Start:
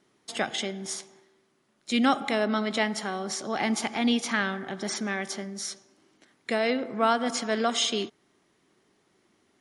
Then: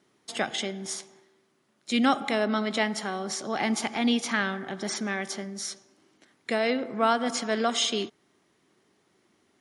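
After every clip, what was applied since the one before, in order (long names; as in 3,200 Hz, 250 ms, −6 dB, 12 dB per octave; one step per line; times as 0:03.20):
high-pass filter 52 Hz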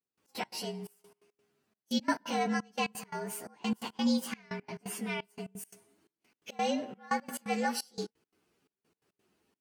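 partials spread apart or drawn together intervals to 115%
gate pattern "..x.x.xxxx" 173 BPM −24 dB
level −3 dB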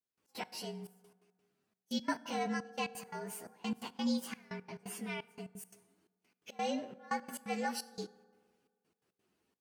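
convolution reverb RT60 1.7 s, pre-delay 3 ms, DRR 17.5 dB
level −5 dB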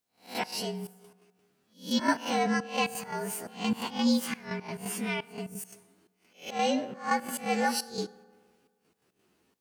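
peak hold with a rise ahead of every peak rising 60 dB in 0.32 s
level +8 dB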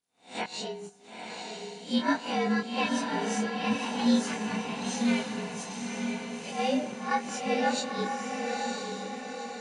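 hearing-aid frequency compression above 2,900 Hz 1.5 to 1
chorus effect 0.32 Hz, depth 3.2 ms
feedback delay with all-pass diffusion 943 ms, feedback 51%, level −3 dB
level +2 dB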